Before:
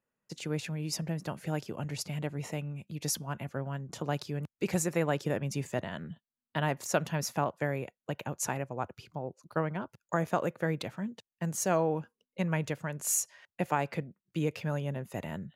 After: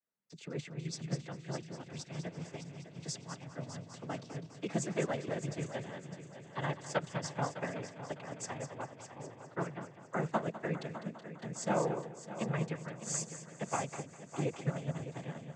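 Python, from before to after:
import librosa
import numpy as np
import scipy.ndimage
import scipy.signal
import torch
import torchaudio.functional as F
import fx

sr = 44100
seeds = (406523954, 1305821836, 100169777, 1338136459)

y = fx.noise_vocoder(x, sr, seeds[0], bands=16)
y = fx.echo_heads(y, sr, ms=202, heads='first and third', feedback_pct=59, wet_db=-9.5)
y = fx.upward_expand(y, sr, threshold_db=-38.0, expansion=1.5)
y = y * librosa.db_to_amplitude(-3.0)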